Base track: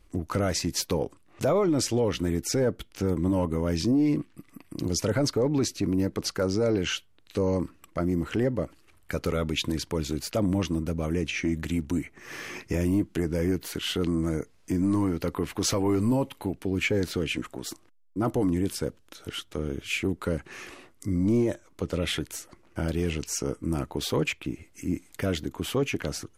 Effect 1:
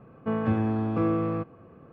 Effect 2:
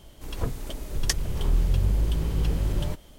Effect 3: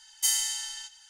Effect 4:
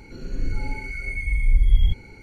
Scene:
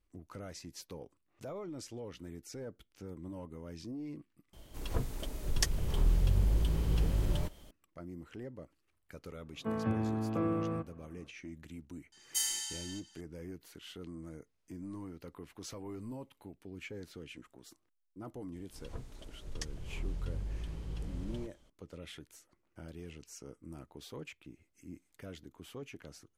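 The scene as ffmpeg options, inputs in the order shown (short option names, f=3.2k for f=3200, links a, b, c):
-filter_complex "[2:a]asplit=2[a][b];[0:a]volume=-19.5dB[c];[1:a]dynaudnorm=f=130:g=3:m=10dB[d];[b]lowpass=8.7k[e];[c]asplit=2[f][g];[f]atrim=end=4.534[h];[a]atrim=end=3.18,asetpts=PTS-STARTPTS,volume=-5dB[i];[g]atrim=start=7.706[j];[d]atrim=end=1.92,asetpts=PTS-STARTPTS,volume=-17dB,afade=t=in:d=0.004:c=hsin,afade=t=out:st=1.916:d=0.004:c=hsin,adelay=9390[k];[3:a]atrim=end=1.09,asetpts=PTS-STARTPTS,volume=-7.5dB,afade=t=in:d=0.004:c=hsin,afade=t=out:st=1.086:d=0.004:c=hsin,adelay=12120[l];[e]atrim=end=3.18,asetpts=PTS-STARTPTS,volume=-15.5dB,afade=t=in:d=0.004:c=hsin,afade=t=out:st=3.176:d=0.004:c=hsin,adelay=18520[m];[h][i]acrossfade=d=0.004:c1=hsin:c2=hsin[n];[n][j]acrossfade=d=0.004:c1=hsin:c2=hsin[o];[o][k][l][m]amix=inputs=4:normalize=0"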